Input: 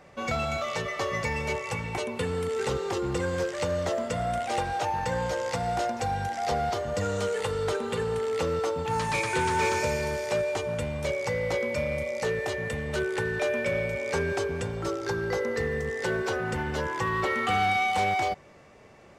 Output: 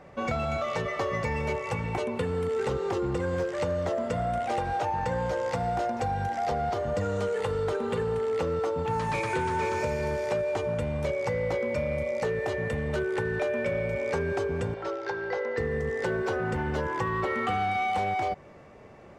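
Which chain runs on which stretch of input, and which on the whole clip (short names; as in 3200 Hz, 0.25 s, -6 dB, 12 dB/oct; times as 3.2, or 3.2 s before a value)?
14.74–15.58 three-band isolator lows -18 dB, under 450 Hz, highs -22 dB, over 5600 Hz + notch 1200 Hz, Q 7.4
whole clip: high shelf 2400 Hz -11 dB; compressor, threshold -29 dBFS; gain +4 dB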